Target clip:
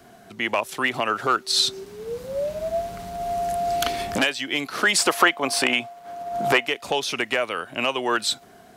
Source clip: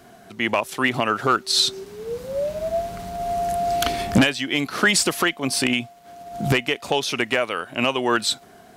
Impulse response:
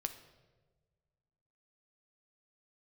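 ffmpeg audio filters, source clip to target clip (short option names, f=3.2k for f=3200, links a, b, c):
-filter_complex "[0:a]asettb=1/sr,asplit=3[a][b][c];[a]atrim=end=4.984[d];[b]atrim=start=4.98:end=6.66,asetpts=PTS-STARTPTS,afade=t=in:d=0.004:c=qsin,afade=t=out:st=1.676:d=0.004:c=qsin,equalizer=f=900:w=0.54:g=9[e];[c]atrim=start=6.656[f];[d][e]acrossfade=d=0.004:c1=hsin:c2=qsin[g];[g][f]acrossfade=d=0.004:c1=qsin:c2=hsin,acrossover=split=330|1400|4100[h][i][j][k];[h]acompressor=threshold=-36dB:ratio=4[l];[l][i][j][k]amix=inputs=4:normalize=0,volume=-1.5dB"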